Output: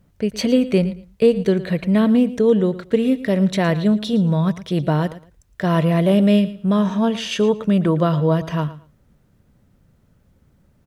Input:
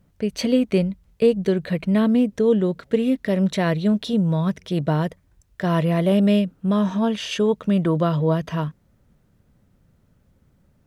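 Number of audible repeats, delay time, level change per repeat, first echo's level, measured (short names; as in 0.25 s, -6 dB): 2, 0.113 s, -14.0 dB, -16.0 dB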